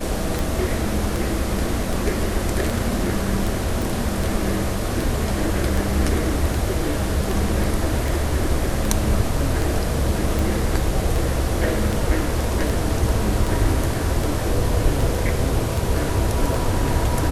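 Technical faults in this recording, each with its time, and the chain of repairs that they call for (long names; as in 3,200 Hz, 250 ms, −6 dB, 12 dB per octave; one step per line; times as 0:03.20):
scratch tick 78 rpm
0:03.82: click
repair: click removal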